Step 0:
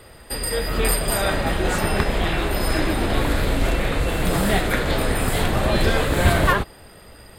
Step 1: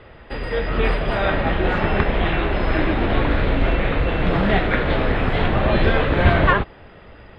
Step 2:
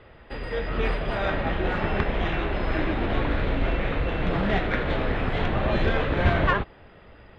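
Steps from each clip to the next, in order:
LPF 3200 Hz 24 dB/oct; gain +2 dB
tracing distortion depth 0.023 ms; gain -6 dB

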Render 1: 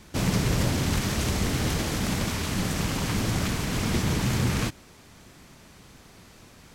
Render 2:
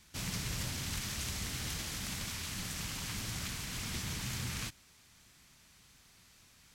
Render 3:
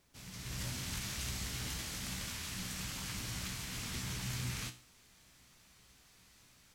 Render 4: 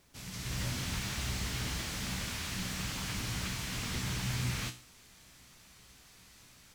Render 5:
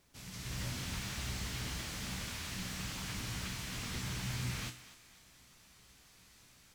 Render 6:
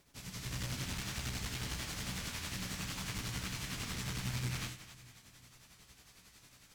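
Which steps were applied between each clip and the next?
passive tone stack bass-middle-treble 5-5-5
AGC gain up to 12 dB; resonator 62 Hz, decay 0.39 s, harmonics all, mix 70%; added noise pink -65 dBFS; gain -8 dB
slew limiter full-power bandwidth 32 Hz; gain +5.5 dB
thinning echo 0.248 s, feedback 40%, high-pass 370 Hz, level -14.5 dB; gain -4 dB
tremolo 11 Hz, depth 51%; one-sided clip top -42.5 dBFS; shoebox room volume 3700 m³, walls mixed, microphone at 0.31 m; gain +3.5 dB

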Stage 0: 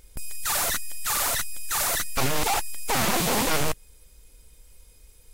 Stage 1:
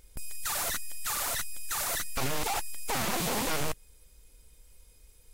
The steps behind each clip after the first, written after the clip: limiter -17.5 dBFS, peak gain reduction 4 dB; gain -4.5 dB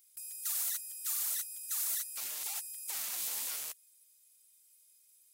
differentiator; gain -3 dB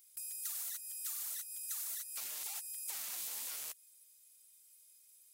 compressor, threshold -40 dBFS, peak gain reduction 9 dB; gain +1.5 dB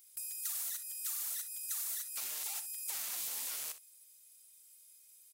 early reflections 41 ms -15 dB, 63 ms -14 dB; gain +2.5 dB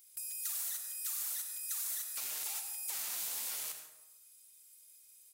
plate-style reverb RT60 0.92 s, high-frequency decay 0.55×, pre-delay 75 ms, DRR 6 dB

